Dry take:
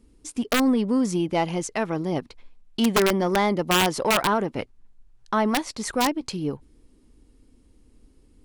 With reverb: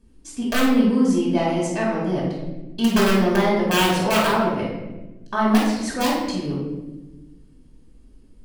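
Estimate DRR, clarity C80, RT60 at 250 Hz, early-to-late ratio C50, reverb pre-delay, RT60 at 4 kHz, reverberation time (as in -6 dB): -5.0 dB, 4.5 dB, 1.8 s, 1.0 dB, 4 ms, 0.75 s, 1.1 s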